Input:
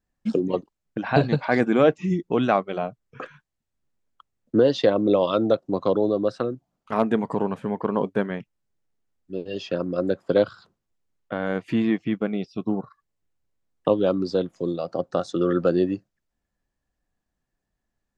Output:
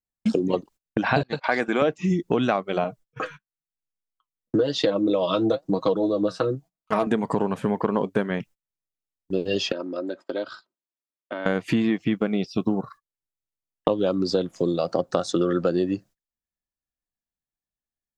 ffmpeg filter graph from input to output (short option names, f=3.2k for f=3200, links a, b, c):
-filter_complex "[0:a]asettb=1/sr,asplit=3[a][b][c];[a]atrim=end=1.234[d];[b]atrim=start=1.23:end=1.82,asetpts=PTS-STARTPTS,afade=t=in:d=0.004:c=qsin,afade=t=out:st=0.586:d=0.004:c=qsin,highpass=f=700:p=1,agate=range=-22dB:threshold=-36dB:ratio=16:release=100:detection=peak,highshelf=f=5.6k:g=-7.5[e];[c]atrim=start=1.816[f];[d][e]acrossfade=d=0.004:c1=hsin:c2=qsin[g];[g][f]acrossfade=d=0.004:c1=qsin:c2=hsin,asettb=1/sr,asplit=3[h][i][j];[h]atrim=end=2.844[k];[i]atrim=start=2.84:end=7.07,asetpts=PTS-STARTPTS,afade=t=in:d=0.004:c=qsin,afade=t=out:st=4.226:d=0.004:c=qsin,aecho=1:1:6.3:0.61,atrim=end_sample=186543,flanger=delay=3.1:depth=8:regen=56:speed=1:shape=triangular[l];[j]atrim=start=7.066[m];[k][l]acrossfade=d=0.004:c1=hsin:c2=qsin[n];[n][m]acrossfade=d=0.004:c1=qsin:c2=hsin,asettb=1/sr,asplit=3[o][p][q];[o]atrim=end=9.724[r];[p]atrim=start=9.72:end=11.46,asetpts=PTS-STARTPTS,afade=t=in:d=0.004:c=qsin,afade=t=out:st=1.736:d=0.004:c=qsin,aecho=1:1:3.2:0.56,atrim=end_sample=76734,acompressor=threshold=-38dB:ratio=3:attack=3.2:release=140:knee=1:detection=peak,highpass=260,lowpass=5.5k[s];[q]atrim=start=11.456[t];[r][s]acrossfade=d=0.004:c1=hsin:c2=qsin[u];[u][t]acrossfade=d=0.004:c1=qsin:c2=hsin,agate=range=-26dB:threshold=-47dB:ratio=16:detection=peak,acompressor=threshold=-27dB:ratio=6,highshelf=f=4.3k:g=8,volume=8dB"